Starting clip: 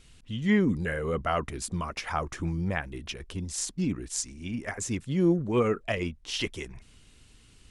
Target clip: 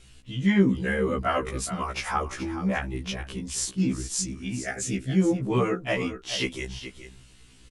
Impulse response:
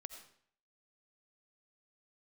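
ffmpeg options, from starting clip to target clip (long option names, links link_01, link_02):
-filter_complex "[0:a]asettb=1/sr,asplit=3[link_01][link_02][link_03];[link_01]atrim=end=4.634[link_04];[link_02]atrim=start=4.63:end=5.18,asetpts=PTS-STARTPTS,afade=type=in:duration=0.004:curve=qsin,afade=type=out:start_time=0.546:duration=0.004:curve=qsin,asuperstop=centerf=1000:order=4:qfactor=2.3[link_05];[link_03]atrim=start=5.176[link_06];[link_04][link_05]acrossfade=duration=0.004:curve1=hsin:curve2=qsin[link_07];[link_07][link_06]acrossfade=duration=0.004:curve1=qsin:curve2=hsin,aecho=1:1:424:0.266,afftfilt=real='re*1.73*eq(mod(b,3),0)':imag='im*1.73*eq(mod(b,3),0)':win_size=2048:overlap=0.75,volume=5.5dB"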